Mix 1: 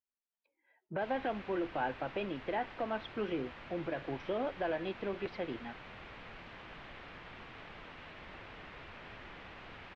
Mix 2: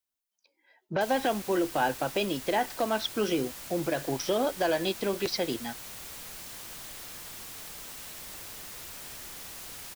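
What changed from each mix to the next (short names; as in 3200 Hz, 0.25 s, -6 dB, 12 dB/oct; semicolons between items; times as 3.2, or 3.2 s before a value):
speech +8.0 dB; master: remove LPF 2700 Hz 24 dB/oct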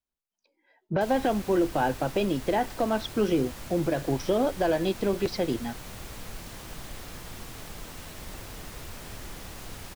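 background +4.0 dB; master: add tilt -2.5 dB/oct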